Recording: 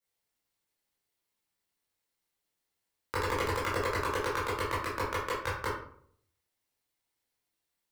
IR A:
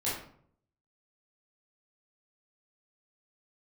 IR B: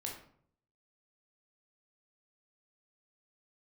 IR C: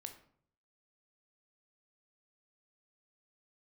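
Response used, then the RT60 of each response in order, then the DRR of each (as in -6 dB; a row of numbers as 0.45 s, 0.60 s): A; 0.60 s, 0.60 s, 0.60 s; -9.5 dB, -1.0 dB, 5.5 dB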